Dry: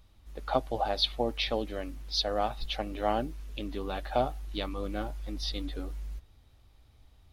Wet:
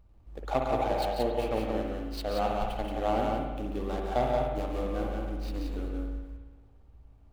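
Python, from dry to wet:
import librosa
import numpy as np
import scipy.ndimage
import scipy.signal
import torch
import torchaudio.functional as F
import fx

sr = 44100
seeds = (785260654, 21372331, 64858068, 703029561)

y = scipy.signal.medfilt(x, 25)
y = fx.echo_multitap(y, sr, ms=(141, 177), db=(-9.0, -3.5))
y = fx.rev_spring(y, sr, rt60_s=1.3, pass_ms=(54,), chirp_ms=60, drr_db=2.5)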